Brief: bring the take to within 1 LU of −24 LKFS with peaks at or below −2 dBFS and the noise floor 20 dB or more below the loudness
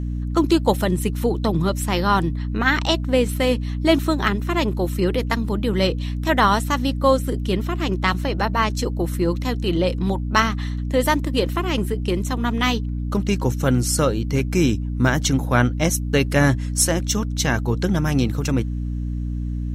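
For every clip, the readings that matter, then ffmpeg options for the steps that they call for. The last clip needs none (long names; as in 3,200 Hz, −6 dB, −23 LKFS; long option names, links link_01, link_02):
mains hum 60 Hz; hum harmonics up to 300 Hz; level of the hum −23 dBFS; integrated loudness −21.0 LKFS; sample peak −4.0 dBFS; target loudness −24.0 LKFS
→ -af "bandreject=frequency=60:width_type=h:width=4,bandreject=frequency=120:width_type=h:width=4,bandreject=frequency=180:width_type=h:width=4,bandreject=frequency=240:width_type=h:width=4,bandreject=frequency=300:width_type=h:width=4"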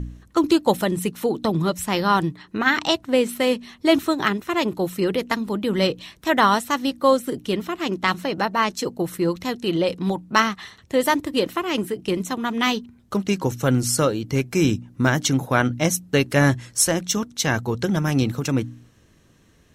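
mains hum none found; integrated loudness −22.0 LKFS; sample peak −3.5 dBFS; target loudness −24.0 LKFS
→ -af "volume=-2dB"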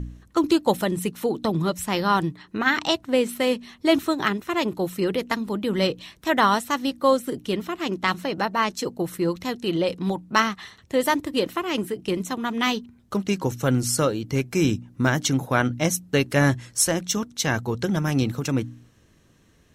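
integrated loudness −24.0 LKFS; sample peak −5.5 dBFS; background noise floor −57 dBFS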